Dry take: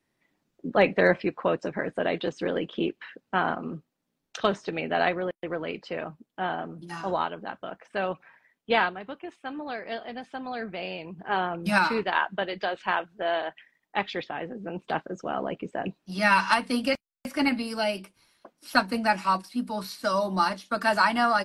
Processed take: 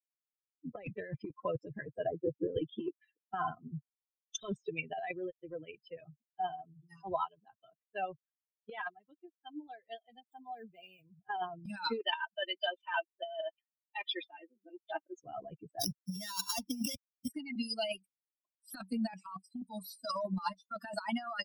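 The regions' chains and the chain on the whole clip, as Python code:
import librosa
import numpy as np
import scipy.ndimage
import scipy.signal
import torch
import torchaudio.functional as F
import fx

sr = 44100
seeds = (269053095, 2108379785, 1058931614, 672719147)

y = fx.chain(x, sr, fx.cheby2_lowpass(hz=6500.0, order=4, stop_db=70),
    fx.band_squash(depth_pct=70), at=(2.07, 2.57))
y = fx.chain(y, sr, fx.crossing_spikes(level_db=-34.5),
    fx.highpass(hz=59.0, slope=12),
    fx.high_shelf(hz=4200.0, db=-10.0), at=(10.32, 11.02))
y = fx.chain(y, sr, fx.highpass(hz=320.0, slope=12),
    fx.comb(ms=3.3, depth=0.62), at=(11.99, 15.2))
y = fx.chain(y, sr, fx.sample_sort(block=8),
    fx.transient(attack_db=-8, sustain_db=1),
    fx.band_squash(depth_pct=100), at=(15.81, 17.28))
y = fx.bin_expand(y, sr, power=3.0)
y = fx.over_compress(y, sr, threshold_db=-41.0, ratio=-1.0)
y = y * 10.0 ** (3.5 / 20.0)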